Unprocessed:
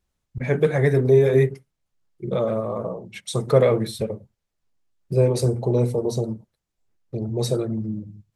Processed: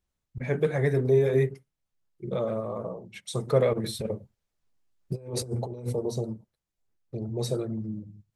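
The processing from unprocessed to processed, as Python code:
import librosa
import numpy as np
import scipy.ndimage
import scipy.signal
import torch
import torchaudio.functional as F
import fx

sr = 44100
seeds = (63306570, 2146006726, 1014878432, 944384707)

y = fx.over_compress(x, sr, threshold_db=-25.0, ratio=-0.5, at=(3.73, 5.93))
y = F.gain(torch.from_numpy(y), -6.0).numpy()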